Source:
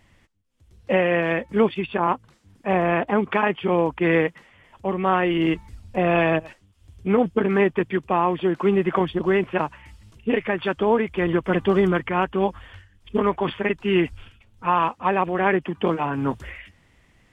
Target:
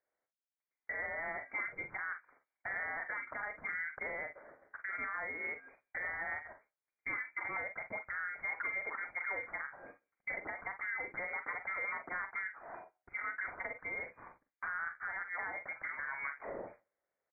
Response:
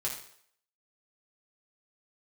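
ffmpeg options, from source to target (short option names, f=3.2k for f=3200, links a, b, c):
-filter_complex "[0:a]highpass=580,agate=range=-29dB:threshold=-52dB:ratio=16:detection=peak,acompressor=threshold=-37dB:ratio=10,alimiter=level_in=10dB:limit=-24dB:level=0:latency=1:release=98,volume=-10dB,aecho=1:1:43|56:0.355|0.188,asplit=2[a][b];[1:a]atrim=start_sample=2205,afade=t=out:st=0.23:d=0.01,atrim=end_sample=10584,asetrate=41895,aresample=44100[c];[b][c]afir=irnorm=-1:irlink=0,volume=-25.5dB[d];[a][d]amix=inputs=2:normalize=0,lowpass=f=2.1k:t=q:w=0.5098,lowpass=f=2.1k:t=q:w=0.6013,lowpass=f=2.1k:t=q:w=0.9,lowpass=f=2.1k:t=q:w=2.563,afreqshift=-2500,volume=3.5dB"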